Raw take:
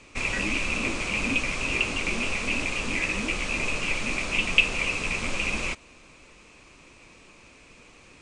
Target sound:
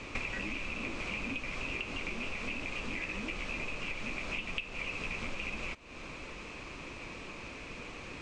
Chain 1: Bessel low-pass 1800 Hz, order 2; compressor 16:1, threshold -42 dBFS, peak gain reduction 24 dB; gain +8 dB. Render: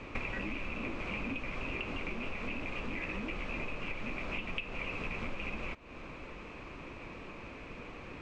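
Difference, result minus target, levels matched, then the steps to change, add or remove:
4000 Hz band -3.0 dB
change: Bessel low-pass 4200 Hz, order 2

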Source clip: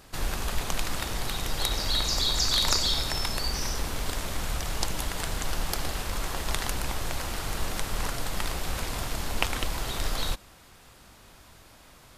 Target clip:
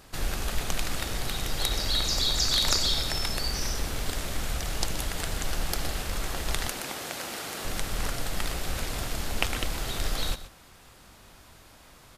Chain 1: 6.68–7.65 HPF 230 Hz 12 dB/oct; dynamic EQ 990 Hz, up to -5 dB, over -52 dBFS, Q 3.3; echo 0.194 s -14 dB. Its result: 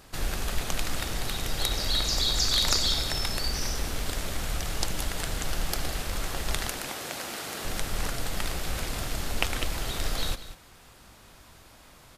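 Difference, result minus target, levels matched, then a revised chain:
echo 69 ms late
6.68–7.65 HPF 230 Hz 12 dB/oct; dynamic EQ 990 Hz, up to -5 dB, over -52 dBFS, Q 3.3; echo 0.125 s -14 dB

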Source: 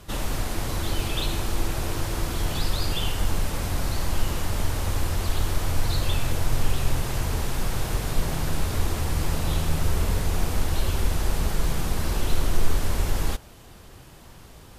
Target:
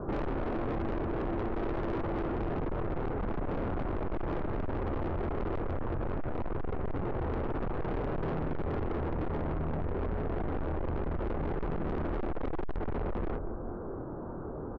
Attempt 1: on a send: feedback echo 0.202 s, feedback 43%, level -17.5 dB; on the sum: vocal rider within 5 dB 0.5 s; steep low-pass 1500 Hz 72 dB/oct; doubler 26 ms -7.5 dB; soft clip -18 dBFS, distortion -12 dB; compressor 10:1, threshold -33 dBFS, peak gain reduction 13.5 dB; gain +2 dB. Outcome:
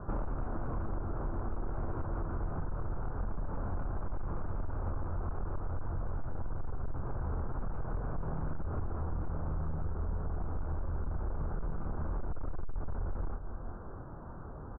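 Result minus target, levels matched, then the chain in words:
500 Hz band -6.0 dB; soft clip: distortion -6 dB
on a send: feedback echo 0.202 s, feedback 43%, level -17.5 dB; on the sum: vocal rider within 5 dB 0.5 s; steep low-pass 1500 Hz 72 dB/oct; bell 370 Hz +13.5 dB 2 oct; doubler 26 ms -7.5 dB; soft clip -26.5 dBFS, distortion -6 dB; compressor 10:1, threshold -33 dBFS, peak gain reduction 6 dB; gain +2 dB

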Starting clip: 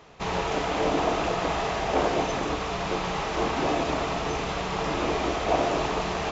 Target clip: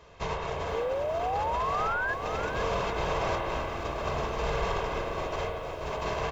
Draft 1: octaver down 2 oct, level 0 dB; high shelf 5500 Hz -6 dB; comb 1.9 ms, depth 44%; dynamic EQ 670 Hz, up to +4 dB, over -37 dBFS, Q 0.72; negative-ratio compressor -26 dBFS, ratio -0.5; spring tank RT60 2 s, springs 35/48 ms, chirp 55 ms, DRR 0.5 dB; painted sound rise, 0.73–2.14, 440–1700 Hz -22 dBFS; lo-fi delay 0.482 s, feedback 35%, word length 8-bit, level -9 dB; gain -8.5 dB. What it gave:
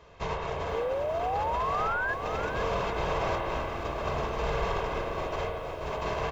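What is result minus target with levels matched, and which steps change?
8000 Hz band -3.0 dB
remove: high shelf 5500 Hz -6 dB

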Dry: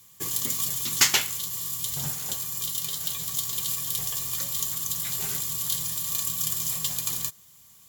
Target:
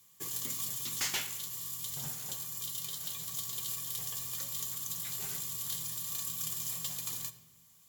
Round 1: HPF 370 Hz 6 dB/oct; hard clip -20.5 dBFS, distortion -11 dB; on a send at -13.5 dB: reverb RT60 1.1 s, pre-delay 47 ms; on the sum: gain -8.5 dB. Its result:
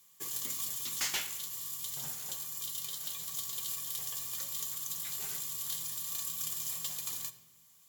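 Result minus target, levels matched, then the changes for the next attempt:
125 Hz band -7.0 dB
change: HPF 110 Hz 6 dB/oct

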